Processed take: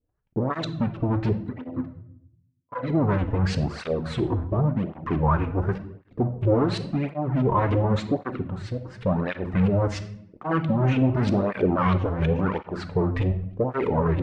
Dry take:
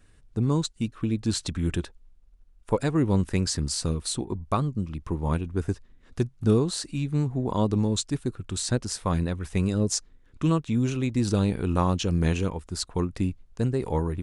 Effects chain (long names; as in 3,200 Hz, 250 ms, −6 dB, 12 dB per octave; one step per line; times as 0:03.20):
0:01.33–0:02.90: resonances in every octave B, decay 0.11 s
0:08.44–0:09.01: downward compressor 3 to 1, threshold −42 dBFS, peak gain reduction 17 dB
0:13.13–0:13.64: comb filter 1.7 ms, depth 53%
leveller curve on the samples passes 5
auto-filter low-pass saw up 3.1 Hz 420–3,000 Hz
on a send at −8 dB: convolution reverb RT60 0.70 s, pre-delay 3 ms
on the sum: through-zero flanger with one copy inverted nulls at 0.91 Hz, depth 5.6 ms
level −7.5 dB